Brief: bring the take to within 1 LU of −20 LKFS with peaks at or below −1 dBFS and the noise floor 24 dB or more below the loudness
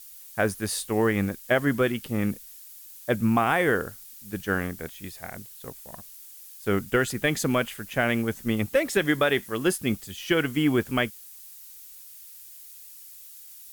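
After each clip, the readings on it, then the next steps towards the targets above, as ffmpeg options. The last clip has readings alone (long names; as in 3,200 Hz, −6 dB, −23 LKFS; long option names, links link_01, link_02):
background noise floor −46 dBFS; target noise floor −50 dBFS; integrated loudness −26.0 LKFS; sample peak −11.0 dBFS; target loudness −20.0 LKFS
→ -af "afftdn=noise_reduction=6:noise_floor=-46"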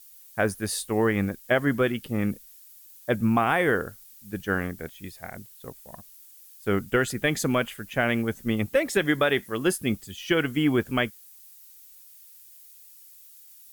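background noise floor −51 dBFS; integrated loudness −26.0 LKFS; sample peak −11.0 dBFS; target loudness −20.0 LKFS
→ -af "volume=6dB"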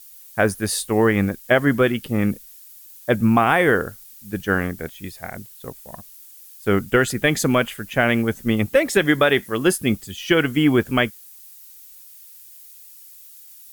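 integrated loudness −20.0 LKFS; sample peak −5.0 dBFS; background noise floor −45 dBFS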